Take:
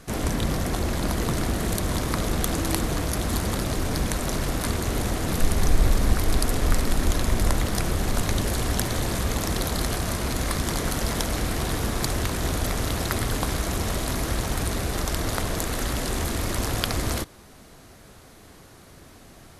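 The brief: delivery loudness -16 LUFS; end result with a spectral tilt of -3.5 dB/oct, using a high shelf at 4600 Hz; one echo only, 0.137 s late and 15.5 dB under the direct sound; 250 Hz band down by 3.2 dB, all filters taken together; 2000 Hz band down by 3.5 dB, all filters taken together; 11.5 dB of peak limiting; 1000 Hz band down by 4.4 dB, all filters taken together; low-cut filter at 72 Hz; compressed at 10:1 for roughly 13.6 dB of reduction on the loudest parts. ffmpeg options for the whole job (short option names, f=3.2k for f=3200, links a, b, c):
-af "highpass=72,equalizer=f=250:t=o:g=-4,equalizer=f=1k:t=o:g=-5,equalizer=f=2k:t=o:g=-3.5,highshelf=f=4.6k:g=4.5,acompressor=threshold=-35dB:ratio=10,alimiter=level_in=2dB:limit=-24dB:level=0:latency=1,volume=-2dB,aecho=1:1:137:0.168,volume=23dB"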